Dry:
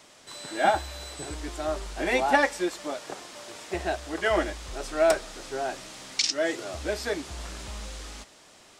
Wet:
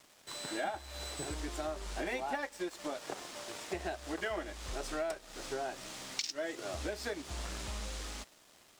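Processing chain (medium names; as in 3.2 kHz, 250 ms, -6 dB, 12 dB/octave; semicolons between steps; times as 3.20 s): compression 6:1, threshold -34 dBFS, peak gain reduction 17 dB; crossover distortion -54 dBFS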